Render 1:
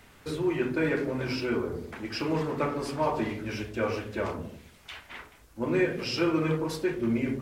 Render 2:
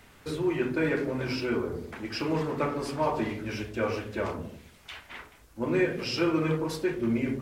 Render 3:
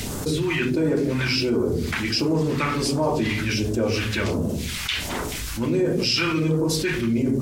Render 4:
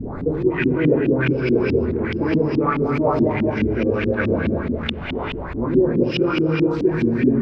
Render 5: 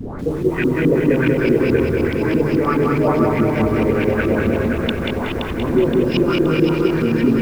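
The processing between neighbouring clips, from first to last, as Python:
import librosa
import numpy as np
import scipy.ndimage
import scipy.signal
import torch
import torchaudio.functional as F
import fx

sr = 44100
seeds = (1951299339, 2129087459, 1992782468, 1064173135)

y1 = x
y2 = fx.low_shelf(y1, sr, hz=91.0, db=-7.5)
y2 = fx.phaser_stages(y2, sr, stages=2, low_hz=470.0, high_hz=2100.0, hz=1.4, feedback_pct=45)
y2 = fx.env_flatten(y2, sr, amount_pct=70)
y2 = F.gain(torch.from_numpy(y2), 3.5).numpy()
y3 = fx.wiener(y2, sr, points=15)
y3 = fx.rev_gated(y3, sr, seeds[0], gate_ms=470, shape='flat', drr_db=1.5)
y3 = fx.filter_lfo_lowpass(y3, sr, shape='saw_up', hz=4.7, low_hz=220.0, high_hz=3000.0, q=2.8)
y4 = fx.dmg_noise_colour(y3, sr, seeds[1], colour='brown', level_db=-43.0)
y4 = fx.echo_feedback(y4, sr, ms=522, feedback_pct=50, wet_db=-6.0)
y4 = fx.echo_crushed(y4, sr, ms=186, feedback_pct=35, bits=7, wet_db=-4.0)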